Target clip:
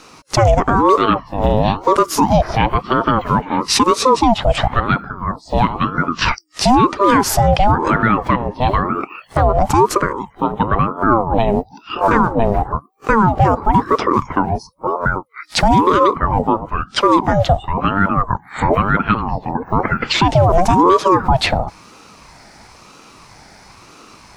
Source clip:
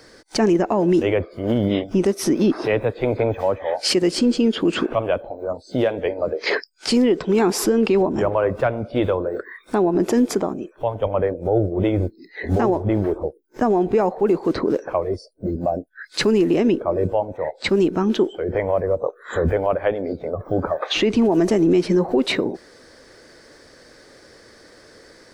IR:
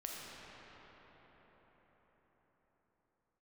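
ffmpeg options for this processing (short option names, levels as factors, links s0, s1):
-af "asetrate=45864,aresample=44100,aeval=exprs='val(0)*sin(2*PI*550*n/s+550*0.45/1*sin(2*PI*1*n/s))':c=same,volume=2.51"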